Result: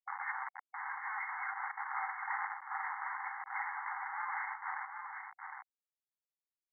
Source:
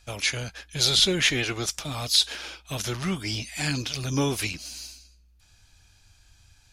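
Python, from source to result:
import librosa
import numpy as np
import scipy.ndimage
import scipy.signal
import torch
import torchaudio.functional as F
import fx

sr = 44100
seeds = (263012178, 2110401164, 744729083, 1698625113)

y = fx.pitch_ramps(x, sr, semitones=4.0, every_ms=1458)
y = fx.schmitt(y, sr, flips_db=-34.5)
y = fx.brickwall_bandpass(y, sr, low_hz=750.0, high_hz=2200.0)
y = fx.air_absorb(y, sr, metres=340.0)
y = y + 10.0 ** (-6.0 / 20.0) * np.pad(y, (int(760 * sr / 1000.0), 0))[:len(y)]
y = y * 10.0 ** (1.5 / 20.0)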